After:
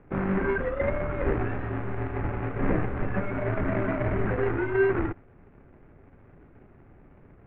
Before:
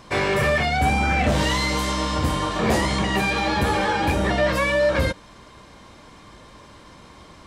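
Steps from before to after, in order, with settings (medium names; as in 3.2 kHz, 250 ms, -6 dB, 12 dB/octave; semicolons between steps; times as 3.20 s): median filter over 41 samples; mistuned SSB -200 Hz 180–2500 Hz; dynamic bell 1.4 kHz, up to +4 dB, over -46 dBFS, Q 0.86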